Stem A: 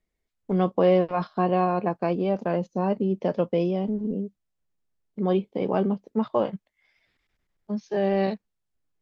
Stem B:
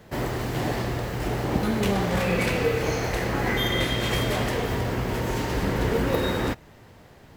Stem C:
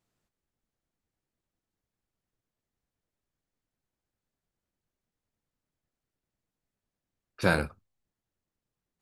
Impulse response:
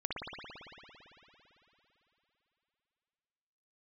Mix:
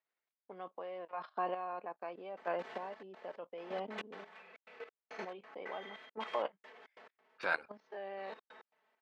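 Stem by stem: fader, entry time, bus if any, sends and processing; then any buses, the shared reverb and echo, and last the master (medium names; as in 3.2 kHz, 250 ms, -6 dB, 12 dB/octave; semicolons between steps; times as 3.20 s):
+1.0 dB, 0.00 s, no send, none
-10.0 dB, 2.15 s, no send, comb 4.6 ms, depth 94%; trance gate "x.x.xxxx.xx..x" 137 bpm -60 dB; auto duck -20 dB, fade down 0.40 s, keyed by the third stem
+2.0 dB, 0.00 s, no send, reverb removal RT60 0.64 s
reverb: none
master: level held to a coarse grid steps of 14 dB; square tremolo 0.81 Hz, depth 60%, duty 25%; band-pass 730–2800 Hz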